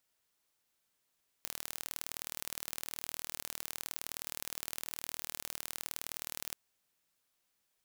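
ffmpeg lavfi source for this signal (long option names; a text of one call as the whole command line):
ffmpeg -f lavfi -i "aevalsrc='0.299*eq(mod(n,1131),0)*(0.5+0.5*eq(mod(n,2262),0))':duration=5.09:sample_rate=44100" out.wav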